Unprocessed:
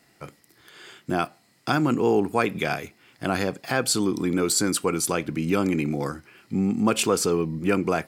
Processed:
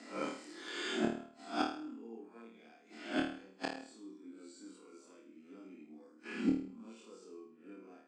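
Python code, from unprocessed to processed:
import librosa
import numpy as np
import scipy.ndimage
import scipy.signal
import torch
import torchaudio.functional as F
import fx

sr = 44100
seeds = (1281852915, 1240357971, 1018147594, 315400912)

p1 = fx.spec_swells(x, sr, rise_s=0.38)
p2 = scipy.signal.sosfilt(scipy.signal.cheby1(4, 1.0, [220.0, 8000.0], 'bandpass', fs=sr, output='sos'), p1)
p3 = fx.hpss(p2, sr, part='percussive', gain_db=-13)
p4 = fx.peak_eq(p3, sr, hz=280.0, db=7.0, octaves=0.69)
p5 = fx.gate_flip(p4, sr, shuts_db=-26.0, range_db=-39)
p6 = p5 + fx.room_flutter(p5, sr, wall_m=4.5, rt60_s=0.5, dry=0)
y = p6 * librosa.db_to_amplitude(6.0)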